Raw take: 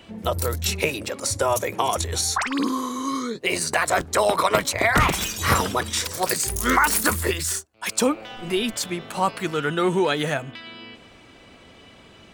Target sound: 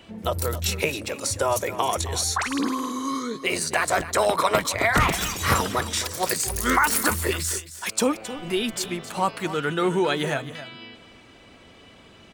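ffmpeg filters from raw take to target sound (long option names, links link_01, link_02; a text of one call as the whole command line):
ffmpeg -i in.wav -af "aecho=1:1:267:0.211,volume=-1.5dB" out.wav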